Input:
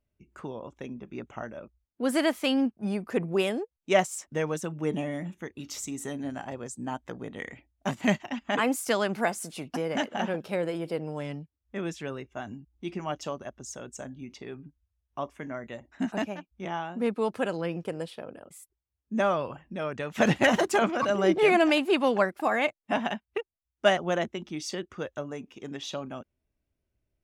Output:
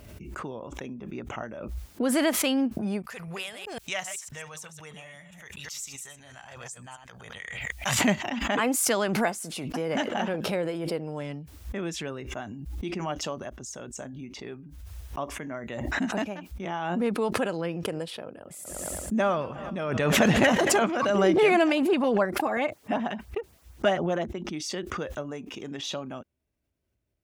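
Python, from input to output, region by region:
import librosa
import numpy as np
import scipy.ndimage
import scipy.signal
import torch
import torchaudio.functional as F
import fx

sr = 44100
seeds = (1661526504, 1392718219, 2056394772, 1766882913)

y = fx.chain(x, sr, fx.reverse_delay(ms=127, wet_db=-10),
    fx.tone_stack(knobs='10-0-10'), at=(3.02, 7.99))
y = fx.chain(y, sr, fx.low_shelf(hz=110.0, db=6.0),
    fx.echo_warbled(ms=112, feedback_pct=71, rate_hz=2.8, cents=70, wet_db=-21), at=(18.36, 20.8))
y = fx.chain(y, sr, fx.high_shelf(hz=2600.0, db=-7.5),
    fx.filter_lfo_notch(shape='saw_up', hz=9.4, low_hz=620.0, high_hz=4600.0, q=1.8), at=(21.72, 24.53))
y = scipy.signal.sosfilt(scipy.signal.butter(2, 47.0, 'highpass', fs=sr, output='sos'), y)
y = fx.pre_swell(y, sr, db_per_s=32.0)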